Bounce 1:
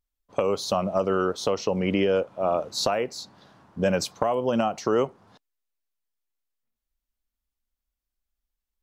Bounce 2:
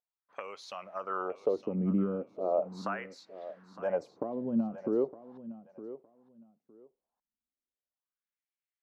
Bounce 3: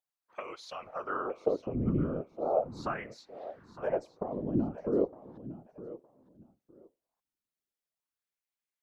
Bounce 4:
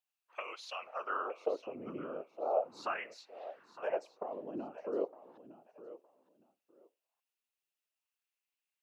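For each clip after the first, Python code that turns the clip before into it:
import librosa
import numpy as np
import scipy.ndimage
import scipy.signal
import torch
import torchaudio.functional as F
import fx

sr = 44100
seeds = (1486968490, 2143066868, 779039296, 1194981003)

y1 = fx.dynamic_eq(x, sr, hz=3300.0, q=1.1, threshold_db=-46.0, ratio=4.0, max_db=-6)
y1 = fx.wah_lfo(y1, sr, hz=0.38, low_hz=200.0, high_hz=2300.0, q=2.8)
y1 = fx.echo_feedback(y1, sr, ms=912, feedback_pct=20, wet_db=-14.5)
y2 = fx.whisperise(y1, sr, seeds[0])
y3 = scipy.signal.sosfilt(scipy.signal.butter(2, 540.0, 'highpass', fs=sr, output='sos'), y2)
y3 = fx.peak_eq(y3, sr, hz=2700.0, db=10.5, octaves=0.29)
y3 = y3 * 10.0 ** (-1.0 / 20.0)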